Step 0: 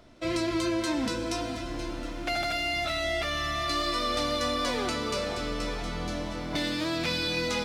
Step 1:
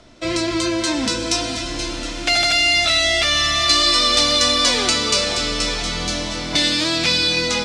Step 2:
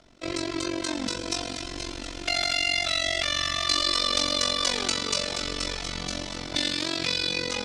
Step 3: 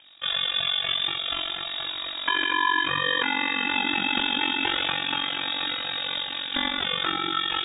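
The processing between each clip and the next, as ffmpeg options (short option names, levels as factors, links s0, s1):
-filter_complex "[0:a]highshelf=f=3500:g=8,acrossover=split=510|2200[s0][s1][s2];[s2]dynaudnorm=f=360:g=7:m=2.37[s3];[s0][s1][s3]amix=inputs=3:normalize=0,lowpass=f=8700:w=0.5412,lowpass=f=8700:w=1.3066,volume=2.11"
-af "tremolo=f=46:d=0.889,volume=0.531"
-af "lowpass=f=3200:t=q:w=0.5098,lowpass=f=3200:t=q:w=0.6013,lowpass=f=3200:t=q:w=0.9,lowpass=f=3200:t=q:w=2.563,afreqshift=-3800,volume=1.68"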